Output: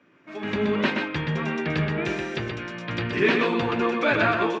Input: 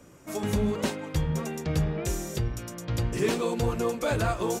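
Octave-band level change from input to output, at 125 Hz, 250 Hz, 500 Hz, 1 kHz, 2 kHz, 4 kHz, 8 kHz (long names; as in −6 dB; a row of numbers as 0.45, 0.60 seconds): −1.5, +4.5, +3.5, +6.5, +12.5, +6.0, −14.0 decibels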